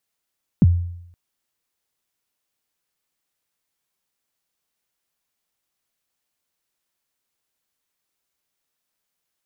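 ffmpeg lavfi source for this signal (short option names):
-f lavfi -i "aevalsrc='0.447*pow(10,-3*t/0.76)*sin(2*PI*(250*0.032/log(87/250)*(exp(log(87/250)*min(t,0.032)/0.032)-1)+87*max(t-0.032,0)))':d=0.52:s=44100"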